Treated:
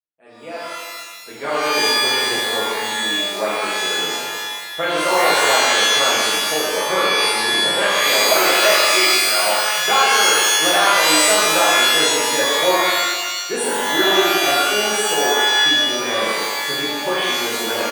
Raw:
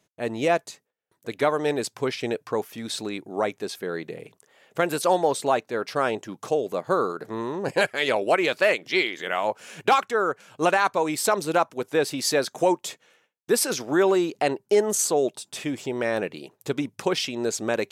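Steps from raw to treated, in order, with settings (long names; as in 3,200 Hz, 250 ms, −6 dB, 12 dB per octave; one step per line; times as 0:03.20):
fade in at the beginning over 1.82 s
high-pass filter 410 Hz 6 dB per octave
downsampling to 22,050 Hz
Butterworth band-reject 5,400 Hz, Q 1
reverb with rising layers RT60 1.4 s, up +12 semitones, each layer −2 dB, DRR −8.5 dB
level −3.5 dB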